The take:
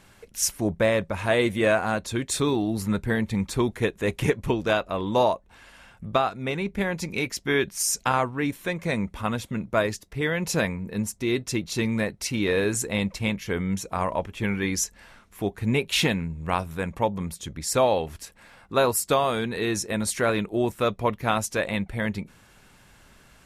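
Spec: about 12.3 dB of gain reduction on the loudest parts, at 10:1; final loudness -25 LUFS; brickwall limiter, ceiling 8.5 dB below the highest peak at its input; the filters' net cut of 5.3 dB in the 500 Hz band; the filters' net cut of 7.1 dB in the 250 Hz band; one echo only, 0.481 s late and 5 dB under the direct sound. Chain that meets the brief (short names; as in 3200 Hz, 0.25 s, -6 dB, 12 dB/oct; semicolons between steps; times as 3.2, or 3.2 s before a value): bell 250 Hz -8.5 dB; bell 500 Hz -4.5 dB; compressor 10:1, threshold -32 dBFS; limiter -27 dBFS; echo 0.481 s -5 dB; gain +12.5 dB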